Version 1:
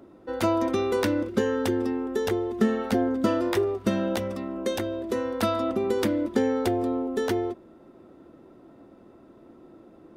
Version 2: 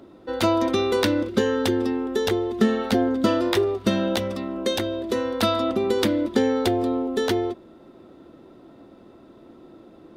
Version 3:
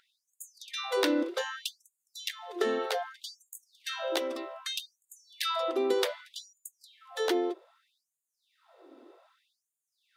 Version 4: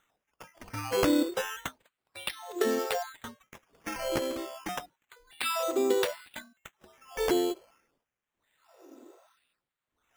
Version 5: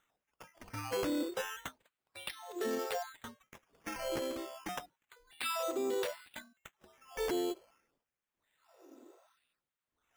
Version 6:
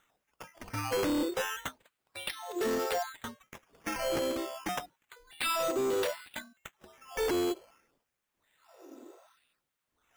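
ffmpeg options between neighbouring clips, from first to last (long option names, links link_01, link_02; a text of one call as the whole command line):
ffmpeg -i in.wav -af "equalizer=frequency=3800:width_type=o:width=0.84:gain=7.5,volume=3dB" out.wav
ffmpeg -i in.wav -af "afftfilt=real='re*gte(b*sr/1024,240*pow(6700/240,0.5+0.5*sin(2*PI*0.64*pts/sr)))':imag='im*gte(b*sr/1024,240*pow(6700/240,0.5+0.5*sin(2*PI*0.64*pts/sr)))':win_size=1024:overlap=0.75,volume=-4.5dB" out.wav
ffmpeg -i in.wav -af "lowpass=frequency=8600:width=0.5412,lowpass=frequency=8600:width=1.3066,bass=frequency=250:gain=10,treble=frequency=4000:gain=1,acrusher=samples=9:mix=1:aa=0.000001:lfo=1:lforange=5.4:lforate=0.3" out.wav
ffmpeg -i in.wav -af "alimiter=limit=-22.5dB:level=0:latency=1:release=10,volume=-5dB" out.wav
ffmpeg -i in.wav -af "asoftclip=type=hard:threshold=-33dB,volume=6.5dB" out.wav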